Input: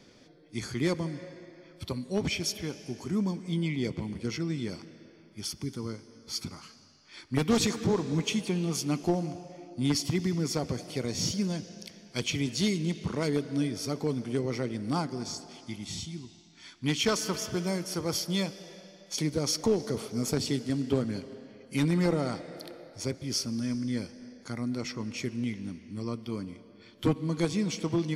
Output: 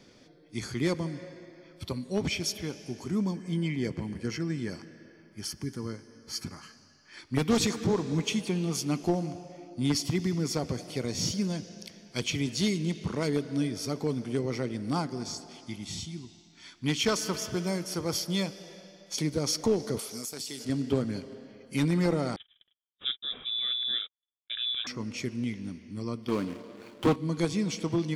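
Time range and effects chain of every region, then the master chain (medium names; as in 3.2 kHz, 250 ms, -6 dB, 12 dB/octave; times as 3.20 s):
3.34–7.19 s: peaking EQ 3.4 kHz -12 dB 0.34 oct + small resonant body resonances 1.7/3.1 kHz, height 16 dB
19.99–20.65 s: RIAA curve recording + compression 16:1, threshold -33 dBFS
22.36–24.87 s: gate -40 dBFS, range -56 dB + frequency inversion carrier 3.7 kHz
26.28–27.16 s: median filter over 25 samples + overdrive pedal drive 21 dB, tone 7.8 kHz, clips at -13.5 dBFS
whole clip: none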